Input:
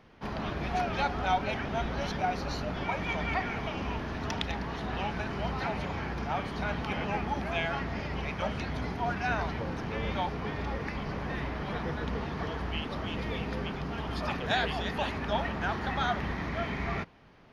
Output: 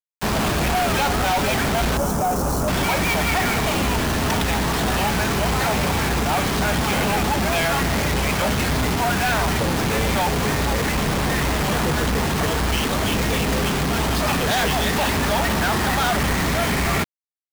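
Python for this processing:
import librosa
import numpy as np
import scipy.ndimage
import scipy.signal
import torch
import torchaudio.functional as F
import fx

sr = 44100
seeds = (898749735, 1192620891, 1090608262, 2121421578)

y = fx.quant_companded(x, sr, bits=2)
y = fx.band_shelf(y, sr, hz=2800.0, db=-14.5, octaves=1.7, at=(1.97, 2.68))
y = y * 10.0 ** (6.5 / 20.0)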